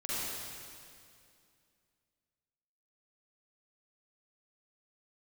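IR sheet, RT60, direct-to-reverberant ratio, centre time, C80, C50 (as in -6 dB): 2.4 s, -10.5 dB, 0.192 s, -4.5 dB, -8.0 dB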